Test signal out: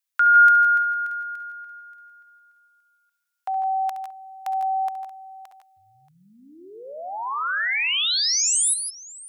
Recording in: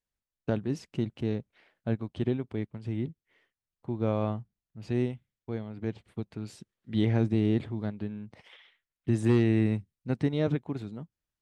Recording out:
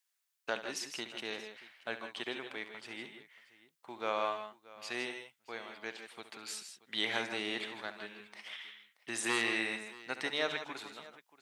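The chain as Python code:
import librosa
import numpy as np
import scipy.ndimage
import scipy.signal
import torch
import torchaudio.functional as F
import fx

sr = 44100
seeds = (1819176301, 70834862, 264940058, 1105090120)

y = scipy.signal.sosfilt(scipy.signal.butter(2, 1200.0, 'highpass', fs=sr, output='sos'), x)
y = fx.high_shelf(y, sr, hz=6400.0, db=4.5)
y = fx.echo_multitap(y, sr, ms=(69, 148, 162, 630), db=(-12.5, -12.0, -10.5, -19.5))
y = y * librosa.db_to_amplitude(8.0)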